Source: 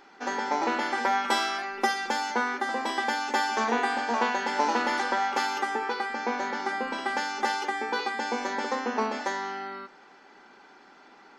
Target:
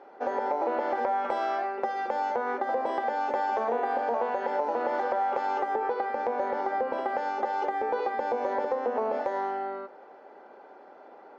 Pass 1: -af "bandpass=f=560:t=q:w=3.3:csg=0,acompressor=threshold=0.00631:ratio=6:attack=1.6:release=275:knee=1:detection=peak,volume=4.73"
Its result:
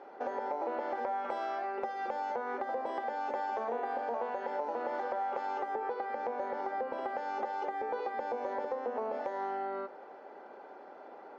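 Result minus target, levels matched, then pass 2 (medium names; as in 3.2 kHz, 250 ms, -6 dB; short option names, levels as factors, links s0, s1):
compression: peak gain reduction +7 dB
-af "bandpass=f=560:t=q:w=3.3:csg=0,acompressor=threshold=0.0168:ratio=6:attack=1.6:release=275:knee=1:detection=peak,volume=4.73"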